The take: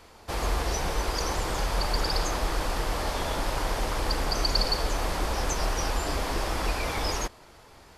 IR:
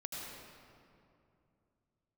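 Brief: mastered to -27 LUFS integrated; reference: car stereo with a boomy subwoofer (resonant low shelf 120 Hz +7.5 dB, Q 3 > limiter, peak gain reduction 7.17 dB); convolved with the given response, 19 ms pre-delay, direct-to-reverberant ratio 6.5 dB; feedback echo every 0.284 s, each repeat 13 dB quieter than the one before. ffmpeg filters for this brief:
-filter_complex "[0:a]aecho=1:1:284|568|852:0.224|0.0493|0.0108,asplit=2[a][b];[1:a]atrim=start_sample=2205,adelay=19[c];[b][c]afir=irnorm=-1:irlink=0,volume=-6.5dB[d];[a][d]amix=inputs=2:normalize=0,lowshelf=f=120:t=q:w=3:g=7.5,volume=-1dB,alimiter=limit=-15.5dB:level=0:latency=1"

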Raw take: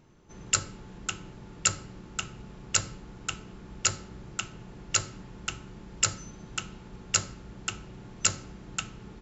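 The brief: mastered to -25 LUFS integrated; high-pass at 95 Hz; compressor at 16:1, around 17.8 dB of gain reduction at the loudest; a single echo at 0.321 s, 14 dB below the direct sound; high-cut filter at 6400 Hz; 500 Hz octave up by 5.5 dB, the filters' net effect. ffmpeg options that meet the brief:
-af "highpass=95,lowpass=6.4k,equalizer=f=500:t=o:g=7,acompressor=threshold=-39dB:ratio=16,aecho=1:1:321:0.2,volume=20.5dB"

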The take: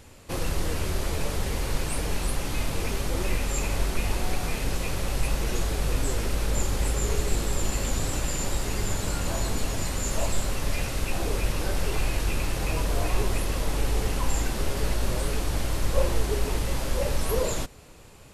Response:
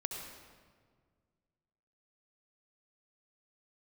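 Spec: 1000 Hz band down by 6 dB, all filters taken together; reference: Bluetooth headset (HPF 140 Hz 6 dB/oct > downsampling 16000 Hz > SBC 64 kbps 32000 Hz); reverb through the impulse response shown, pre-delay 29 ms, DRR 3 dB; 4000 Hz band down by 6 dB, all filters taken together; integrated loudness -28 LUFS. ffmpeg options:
-filter_complex "[0:a]equalizer=f=1k:t=o:g=-7.5,equalizer=f=4k:t=o:g=-7.5,asplit=2[a][b];[1:a]atrim=start_sample=2205,adelay=29[c];[b][c]afir=irnorm=-1:irlink=0,volume=-4dB[d];[a][d]amix=inputs=2:normalize=0,highpass=f=140:p=1,aresample=16000,aresample=44100,volume=4dB" -ar 32000 -c:a sbc -b:a 64k

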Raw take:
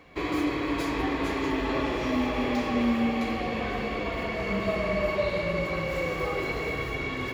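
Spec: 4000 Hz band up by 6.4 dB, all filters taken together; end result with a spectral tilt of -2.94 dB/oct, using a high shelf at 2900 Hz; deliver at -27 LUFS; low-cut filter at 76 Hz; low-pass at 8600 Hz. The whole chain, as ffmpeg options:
-af "highpass=76,lowpass=8.6k,highshelf=f=2.9k:g=4.5,equalizer=f=4k:t=o:g=5"

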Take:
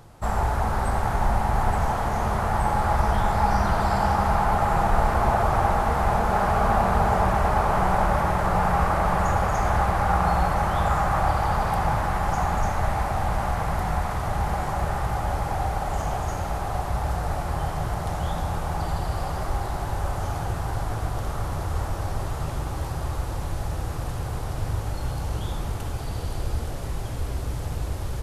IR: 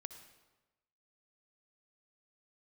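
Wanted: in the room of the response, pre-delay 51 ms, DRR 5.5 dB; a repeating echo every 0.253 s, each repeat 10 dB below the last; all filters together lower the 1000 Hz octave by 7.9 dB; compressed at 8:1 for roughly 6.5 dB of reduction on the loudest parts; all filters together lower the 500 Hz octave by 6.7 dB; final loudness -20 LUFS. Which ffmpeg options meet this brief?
-filter_complex "[0:a]equalizer=f=500:t=o:g=-5.5,equalizer=f=1k:t=o:g=-8.5,acompressor=threshold=-24dB:ratio=8,aecho=1:1:253|506|759|1012:0.316|0.101|0.0324|0.0104,asplit=2[a][b];[1:a]atrim=start_sample=2205,adelay=51[c];[b][c]afir=irnorm=-1:irlink=0,volume=-1dB[d];[a][d]amix=inputs=2:normalize=0,volume=10dB"

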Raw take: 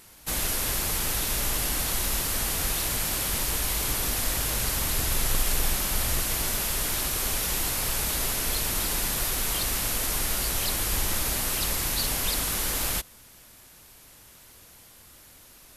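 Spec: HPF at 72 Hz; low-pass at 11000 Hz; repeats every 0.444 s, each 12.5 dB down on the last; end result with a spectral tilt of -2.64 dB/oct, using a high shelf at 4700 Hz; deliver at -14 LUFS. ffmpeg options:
-af "highpass=72,lowpass=11k,highshelf=f=4.7k:g=-6,aecho=1:1:444|888|1332:0.237|0.0569|0.0137,volume=16.5dB"

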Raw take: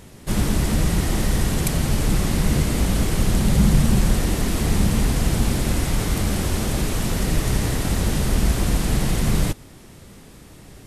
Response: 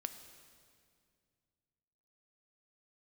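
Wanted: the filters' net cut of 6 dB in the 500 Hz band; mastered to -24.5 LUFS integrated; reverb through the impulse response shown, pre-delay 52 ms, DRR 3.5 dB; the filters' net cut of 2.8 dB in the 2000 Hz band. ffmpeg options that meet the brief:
-filter_complex "[0:a]equalizer=f=500:t=o:g=-8,equalizer=f=2k:t=o:g=-3,asplit=2[a][b];[1:a]atrim=start_sample=2205,adelay=52[c];[b][c]afir=irnorm=-1:irlink=0,volume=-1.5dB[d];[a][d]amix=inputs=2:normalize=0,volume=-3.5dB"

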